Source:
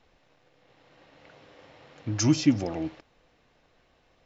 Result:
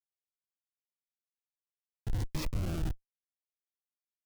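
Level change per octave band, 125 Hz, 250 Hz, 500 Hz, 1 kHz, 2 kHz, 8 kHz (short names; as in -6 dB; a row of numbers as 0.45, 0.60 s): -5.5 dB, -17.0 dB, -11.5 dB, -8.5 dB, -9.0 dB, n/a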